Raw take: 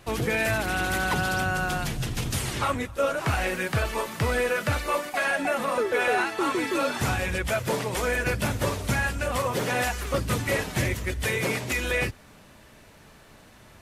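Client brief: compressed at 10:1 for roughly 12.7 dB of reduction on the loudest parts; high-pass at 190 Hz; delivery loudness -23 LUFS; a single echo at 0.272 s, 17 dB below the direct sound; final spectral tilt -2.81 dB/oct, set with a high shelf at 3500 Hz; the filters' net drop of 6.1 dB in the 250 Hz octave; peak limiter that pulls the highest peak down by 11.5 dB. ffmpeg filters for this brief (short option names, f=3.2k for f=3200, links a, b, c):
-af "highpass=190,equalizer=f=250:t=o:g=-6.5,highshelf=f=3.5k:g=6,acompressor=threshold=-34dB:ratio=10,alimiter=level_in=5dB:limit=-24dB:level=0:latency=1,volume=-5dB,aecho=1:1:272:0.141,volume=15.5dB"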